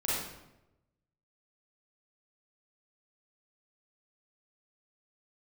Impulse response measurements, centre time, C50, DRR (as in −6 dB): 80 ms, −2.5 dB, −8.5 dB